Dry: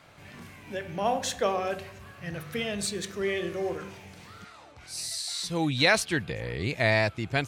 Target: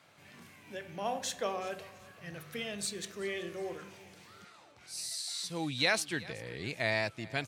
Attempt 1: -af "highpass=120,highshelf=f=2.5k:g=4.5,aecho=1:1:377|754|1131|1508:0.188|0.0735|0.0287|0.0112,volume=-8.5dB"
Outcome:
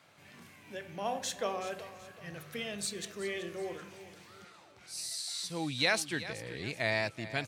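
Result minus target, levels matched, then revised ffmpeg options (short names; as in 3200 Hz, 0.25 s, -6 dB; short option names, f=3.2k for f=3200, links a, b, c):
echo-to-direct +6 dB
-af "highpass=120,highshelf=f=2.5k:g=4.5,aecho=1:1:377|754|1131:0.0944|0.0368|0.0144,volume=-8.5dB"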